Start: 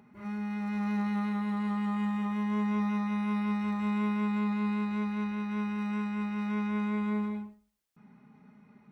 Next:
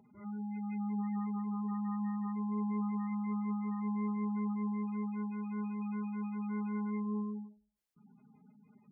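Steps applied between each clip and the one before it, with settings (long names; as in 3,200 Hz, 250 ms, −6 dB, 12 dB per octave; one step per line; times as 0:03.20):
gate on every frequency bin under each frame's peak −20 dB strong
level −5 dB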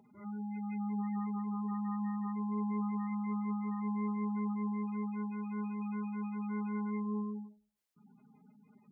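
low-shelf EQ 85 Hz −12 dB
level +1.5 dB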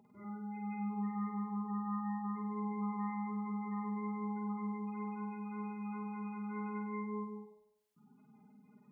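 flutter between parallel walls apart 8.5 metres, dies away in 0.82 s
level −2 dB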